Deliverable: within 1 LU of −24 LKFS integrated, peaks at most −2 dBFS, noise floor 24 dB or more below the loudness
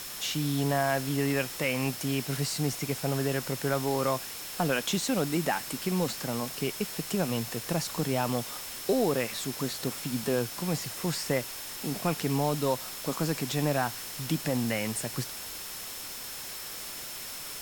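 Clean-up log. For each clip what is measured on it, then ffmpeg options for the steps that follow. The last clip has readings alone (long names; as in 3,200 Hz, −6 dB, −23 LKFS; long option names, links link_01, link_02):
interfering tone 5,300 Hz; level of the tone −47 dBFS; background noise floor −40 dBFS; target noise floor −55 dBFS; integrated loudness −30.5 LKFS; sample peak −13.5 dBFS; target loudness −24.0 LKFS
→ -af "bandreject=frequency=5300:width=30"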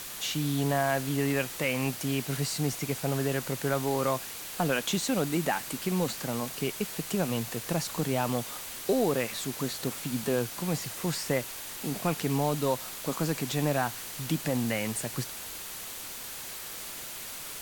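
interfering tone none found; background noise floor −40 dBFS; target noise floor −55 dBFS
→ -af "afftdn=noise_reduction=15:noise_floor=-40"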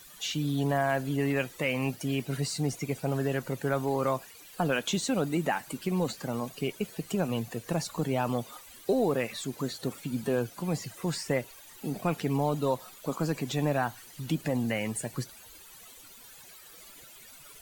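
background noise floor −51 dBFS; target noise floor −55 dBFS
→ -af "afftdn=noise_reduction=6:noise_floor=-51"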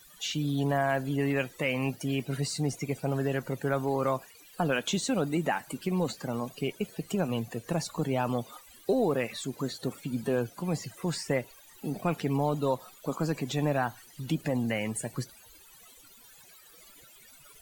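background noise floor −55 dBFS; integrated loudness −31.0 LKFS; sample peak −14.5 dBFS; target loudness −24.0 LKFS
→ -af "volume=7dB"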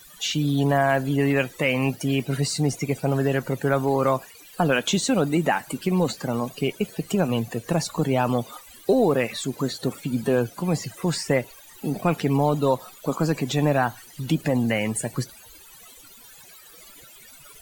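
integrated loudness −24.0 LKFS; sample peak −7.5 dBFS; background noise floor −48 dBFS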